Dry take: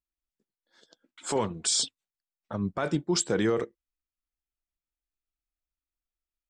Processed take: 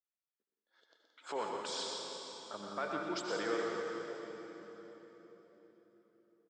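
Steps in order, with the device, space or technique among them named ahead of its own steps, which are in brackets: station announcement (BPF 440–3700 Hz; bell 1300 Hz +4.5 dB 0.44 oct; loudspeakers at several distances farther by 42 m -7 dB, 59 m -9 dB; reverb RT60 4.2 s, pre-delay 70 ms, DRR 1 dB); gain -8.5 dB

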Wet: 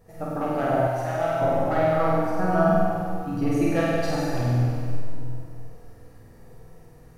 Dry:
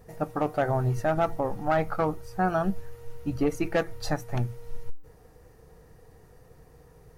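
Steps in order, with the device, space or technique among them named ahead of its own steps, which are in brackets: tunnel (flutter echo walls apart 8.4 m, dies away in 1.2 s; reverb RT60 2.4 s, pre-delay 5 ms, DRR -3.5 dB); 0.87–1.42 low shelf 450 Hz -10.5 dB; gain -5 dB

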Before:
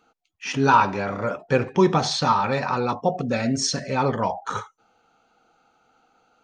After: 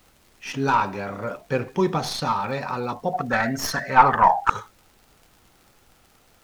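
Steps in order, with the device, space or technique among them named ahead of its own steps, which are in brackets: 3.13–4.5 band shelf 1200 Hz +15.5 dB; record under a worn stylus (tracing distortion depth 0.055 ms; crackle; pink noise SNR 34 dB); gain -4 dB

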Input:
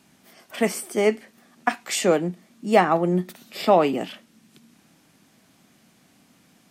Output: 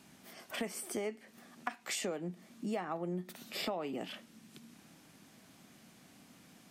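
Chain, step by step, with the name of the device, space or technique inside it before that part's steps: serial compression, peaks first (compressor 5:1, threshold -29 dBFS, peak gain reduction 16.5 dB; compressor 1.5:1, threshold -41 dBFS, peak gain reduction 6 dB); gain -1.5 dB

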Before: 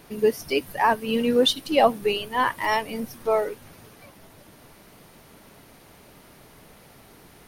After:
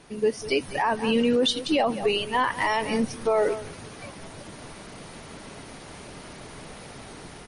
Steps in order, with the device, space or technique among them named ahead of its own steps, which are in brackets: echo 0.196 s -20 dB; low-bitrate web radio (AGC gain up to 10.5 dB; limiter -12.5 dBFS, peak gain reduction 11.5 dB; gain -1.5 dB; MP3 40 kbps 32000 Hz)

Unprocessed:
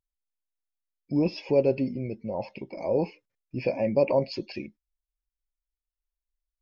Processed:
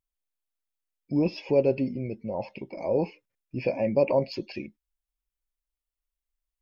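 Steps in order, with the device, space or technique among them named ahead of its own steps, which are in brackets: exciter from parts (in parallel at -12.5 dB: HPF 3200 Hz 24 dB/oct + soft clip -34 dBFS, distortion -15 dB + HPF 2200 Hz 24 dB/oct)

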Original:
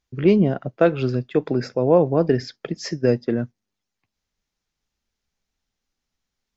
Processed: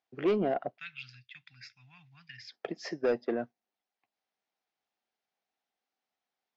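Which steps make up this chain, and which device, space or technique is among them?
0.78–2.52 elliptic band-stop 100–2200 Hz, stop band 80 dB; intercom (BPF 340–3800 Hz; bell 730 Hz +10 dB 0.4 oct; soft clip -15.5 dBFS, distortion -13 dB); gain -5 dB

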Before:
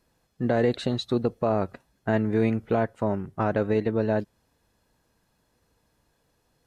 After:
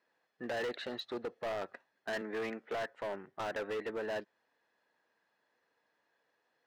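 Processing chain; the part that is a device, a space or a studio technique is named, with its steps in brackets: 2.21–2.88 HPF 160 Hz 24 dB/oct; megaphone (BPF 450–3600 Hz; bell 1800 Hz +8 dB 0.36 oct; hard clip -28 dBFS, distortion -7 dB); gain -5.5 dB

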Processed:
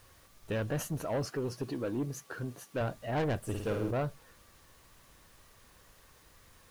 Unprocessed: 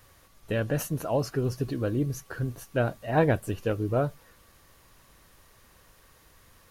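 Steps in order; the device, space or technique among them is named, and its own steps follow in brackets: 1.25–2.81 HPF 170 Hz 12 dB/oct; compact cassette (soft clip -24.5 dBFS, distortion -10 dB; LPF 11000 Hz 12 dB/oct; wow and flutter; white noise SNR 30 dB); 3.43–3.91 flutter echo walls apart 9.1 m, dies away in 0.81 s; gain -2.5 dB

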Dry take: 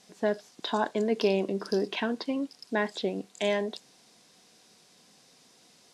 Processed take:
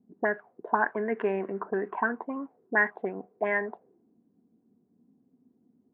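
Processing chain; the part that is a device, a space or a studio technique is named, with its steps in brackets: envelope filter bass rig (envelope low-pass 250–1800 Hz up, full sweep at -24.5 dBFS; speaker cabinet 82–2100 Hz, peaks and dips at 140 Hz -9 dB, 200 Hz -4 dB, 300 Hz -7 dB, 550 Hz -8 dB)

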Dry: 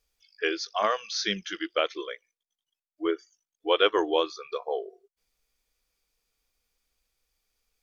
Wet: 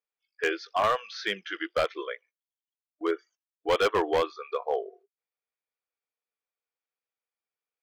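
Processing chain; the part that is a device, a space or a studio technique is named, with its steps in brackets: walkie-talkie (BPF 440–2200 Hz; hard clip -22.5 dBFS, distortion -10 dB; gate -58 dBFS, range -15 dB); gain +4 dB

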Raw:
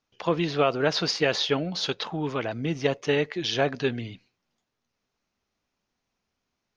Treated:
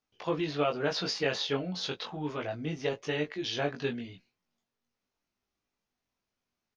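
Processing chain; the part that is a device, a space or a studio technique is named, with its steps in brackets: double-tracked vocal (doubler 17 ms -13 dB; chorus 0.35 Hz, delay 19.5 ms, depth 2.3 ms); gain -3.5 dB

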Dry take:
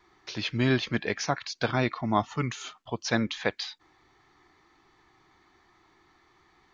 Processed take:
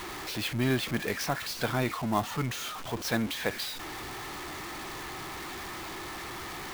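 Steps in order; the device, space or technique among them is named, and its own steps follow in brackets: early CD player with a faulty converter (zero-crossing step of -29 dBFS; clock jitter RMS 0.02 ms); gain -4.5 dB

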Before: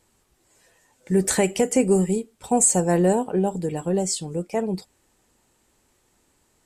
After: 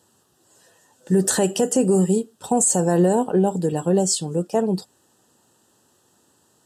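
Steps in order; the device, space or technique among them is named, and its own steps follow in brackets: PA system with an anti-feedback notch (HPF 100 Hz 24 dB/oct; Butterworth band-stop 2200 Hz, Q 2.6; limiter -13.5 dBFS, peak gain reduction 7.5 dB); gain +4.5 dB

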